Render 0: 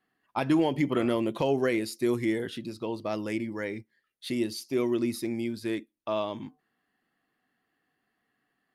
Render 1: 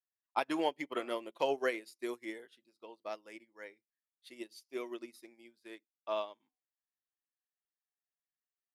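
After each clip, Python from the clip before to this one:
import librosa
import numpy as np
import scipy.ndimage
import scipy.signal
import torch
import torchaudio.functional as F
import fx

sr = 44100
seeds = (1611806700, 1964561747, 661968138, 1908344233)

y = scipy.signal.sosfilt(scipy.signal.butter(2, 500.0, 'highpass', fs=sr, output='sos'), x)
y = fx.upward_expand(y, sr, threshold_db=-46.0, expansion=2.5)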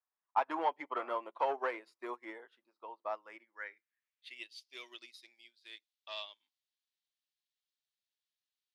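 y = 10.0 ** (-28.5 / 20.0) * np.tanh(x / 10.0 ** (-28.5 / 20.0))
y = fx.filter_sweep_bandpass(y, sr, from_hz=1000.0, to_hz=3700.0, start_s=3.12, end_s=4.74, q=2.3)
y = F.gain(torch.from_numpy(y), 10.0).numpy()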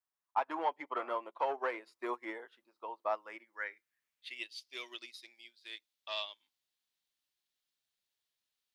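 y = fx.rider(x, sr, range_db=3, speed_s=0.5)
y = F.gain(torch.from_numpy(y), 1.5).numpy()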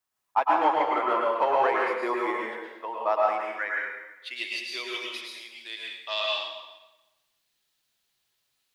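y = fx.rev_plate(x, sr, seeds[0], rt60_s=1.1, hf_ratio=0.85, predelay_ms=95, drr_db=-3.0)
y = F.gain(torch.from_numpy(y), 8.0).numpy()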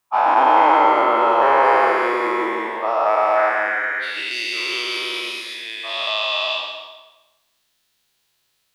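y = fx.spec_dilate(x, sr, span_ms=480)
y = y + 10.0 ** (-10.0 / 20.0) * np.pad(y, (int(172 * sr / 1000.0), 0))[:len(y)]
y = F.gain(torch.from_numpy(y), 1.0).numpy()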